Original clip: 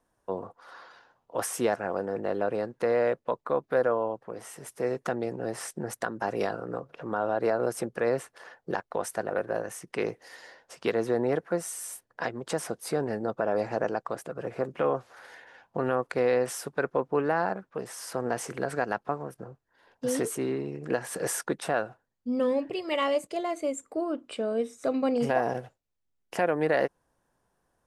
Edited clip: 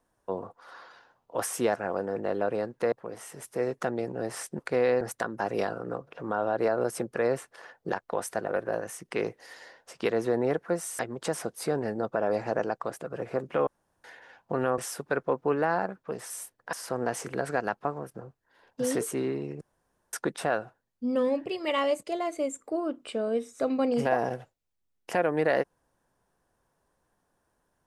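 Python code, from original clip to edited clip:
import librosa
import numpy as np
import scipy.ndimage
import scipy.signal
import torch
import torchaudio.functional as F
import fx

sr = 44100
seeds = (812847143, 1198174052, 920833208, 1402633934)

y = fx.edit(x, sr, fx.cut(start_s=2.92, length_s=1.24),
    fx.move(start_s=11.81, length_s=0.43, to_s=17.97),
    fx.room_tone_fill(start_s=14.92, length_s=0.37),
    fx.move(start_s=16.03, length_s=0.42, to_s=5.83),
    fx.room_tone_fill(start_s=20.85, length_s=0.52), tone=tone)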